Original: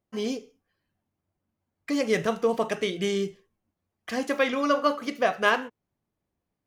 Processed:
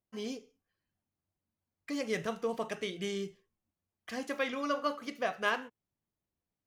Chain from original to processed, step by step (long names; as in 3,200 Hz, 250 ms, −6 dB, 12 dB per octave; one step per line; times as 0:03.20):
parametric band 450 Hz −2.5 dB 2.7 octaves
level −7.5 dB